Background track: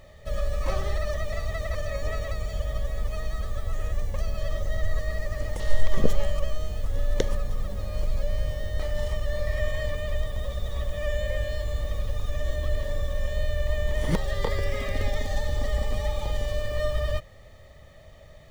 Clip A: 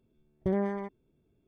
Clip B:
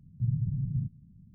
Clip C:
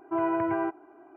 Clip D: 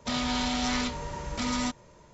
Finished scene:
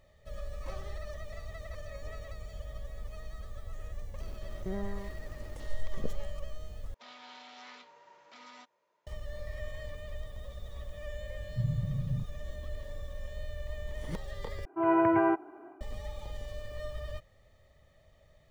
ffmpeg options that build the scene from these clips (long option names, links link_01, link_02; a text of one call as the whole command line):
ffmpeg -i bed.wav -i cue0.wav -i cue1.wav -i cue2.wav -i cue3.wav -filter_complex "[0:a]volume=-13dB[link_01];[1:a]aeval=exprs='val(0)+0.5*0.0126*sgn(val(0))':channel_layout=same[link_02];[4:a]highpass=550,lowpass=3800[link_03];[3:a]dynaudnorm=framelen=130:gausssize=3:maxgain=9.5dB[link_04];[link_01]asplit=3[link_05][link_06][link_07];[link_05]atrim=end=6.944[link_08];[link_03]atrim=end=2.13,asetpts=PTS-STARTPTS,volume=-17.5dB[link_09];[link_06]atrim=start=9.066:end=14.654[link_10];[link_04]atrim=end=1.16,asetpts=PTS-STARTPTS,volume=-6.5dB[link_11];[link_07]atrim=start=15.806[link_12];[link_02]atrim=end=1.47,asetpts=PTS-STARTPTS,volume=-10dB,afade=type=in:duration=0.004:curve=hsin,afade=type=out:start_time=1.466:duration=0.004:curve=hsin,adelay=4200[link_13];[2:a]atrim=end=1.34,asetpts=PTS-STARTPTS,volume=-2.5dB,afade=type=in:duration=0.004:curve=hsin,afade=type=out:start_time=1.336:duration=0.004:curve=hsin,adelay=11360[link_14];[link_08][link_09]acrossfade=duration=0.004:curve1=hsin:curve2=hsin[link_15];[link_15][link_10]acrossfade=duration=0.004:curve1=hsin:curve2=hsin[link_16];[link_16][link_11]acrossfade=duration=0.004:curve1=hsin:curve2=hsin[link_17];[link_17][link_12]acrossfade=duration=0.004:curve1=hsin:curve2=hsin[link_18];[link_18][link_13][link_14]amix=inputs=3:normalize=0" out.wav